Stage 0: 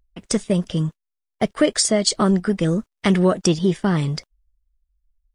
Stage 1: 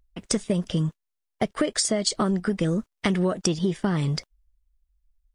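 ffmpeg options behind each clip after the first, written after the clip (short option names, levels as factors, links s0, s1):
-af "acompressor=threshold=0.1:ratio=6"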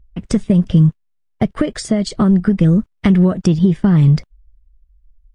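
-af "bass=f=250:g=14,treble=f=4000:g=-9,volume=1.41"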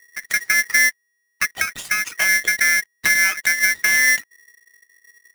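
-af "aeval=exprs='val(0)*sgn(sin(2*PI*1900*n/s))':c=same,volume=0.531"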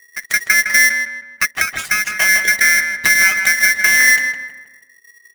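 -filter_complex "[0:a]asplit=2[s0][s1];[s1]adelay=159,lowpass=f=2300:p=1,volume=0.562,asplit=2[s2][s3];[s3]adelay=159,lowpass=f=2300:p=1,volume=0.42,asplit=2[s4][s5];[s5]adelay=159,lowpass=f=2300:p=1,volume=0.42,asplit=2[s6][s7];[s7]adelay=159,lowpass=f=2300:p=1,volume=0.42,asplit=2[s8][s9];[s9]adelay=159,lowpass=f=2300:p=1,volume=0.42[s10];[s0][s2][s4][s6][s8][s10]amix=inputs=6:normalize=0,volume=1.58"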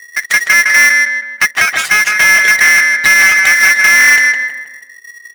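-filter_complex "[0:a]asplit=2[s0][s1];[s1]highpass=f=720:p=1,volume=8.91,asoftclip=type=tanh:threshold=0.891[s2];[s0][s2]amix=inputs=2:normalize=0,lowpass=f=5400:p=1,volume=0.501"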